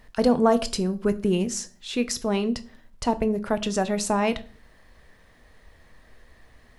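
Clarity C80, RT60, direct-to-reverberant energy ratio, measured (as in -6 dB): 23.5 dB, 0.40 s, 11.0 dB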